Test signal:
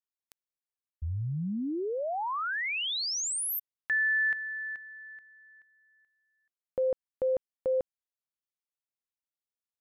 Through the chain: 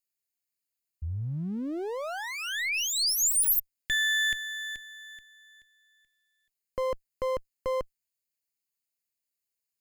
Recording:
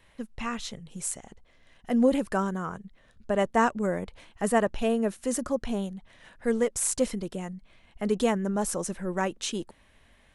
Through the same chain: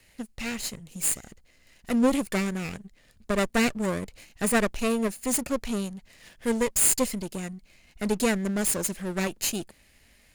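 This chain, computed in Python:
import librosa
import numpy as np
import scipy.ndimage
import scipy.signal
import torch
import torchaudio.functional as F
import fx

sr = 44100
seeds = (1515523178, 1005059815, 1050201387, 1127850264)

y = fx.lower_of_two(x, sr, delay_ms=0.43)
y = fx.high_shelf(y, sr, hz=3800.0, db=11.0)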